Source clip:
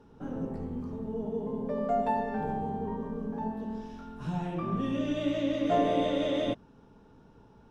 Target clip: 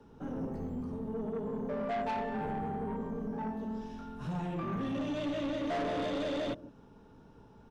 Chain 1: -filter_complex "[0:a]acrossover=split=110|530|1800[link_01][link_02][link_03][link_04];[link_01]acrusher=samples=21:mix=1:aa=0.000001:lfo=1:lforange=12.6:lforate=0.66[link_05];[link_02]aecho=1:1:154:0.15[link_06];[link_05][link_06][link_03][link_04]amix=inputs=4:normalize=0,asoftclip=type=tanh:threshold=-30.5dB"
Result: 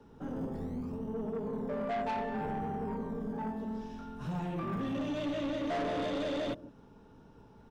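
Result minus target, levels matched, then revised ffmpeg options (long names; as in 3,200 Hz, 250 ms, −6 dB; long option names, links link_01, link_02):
sample-and-hold swept by an LFO: distortion +12 dB
-filter_complex "[0:a]acrossover=split=110|530|1800[link_01][link_02][link_03][link_04];[link_01]acrusher=samples=6:mix=1:aa=0.000001:lfo=1:lforange=3.6:lforate=0.66[link_05];[link_02]aecho=1:1:154:0.15[link_06];[link_05][link_06][link_03][link_04]amix=inputs=4:normalize=0,asoftclip=type=tanh:threshold=-30.5dB"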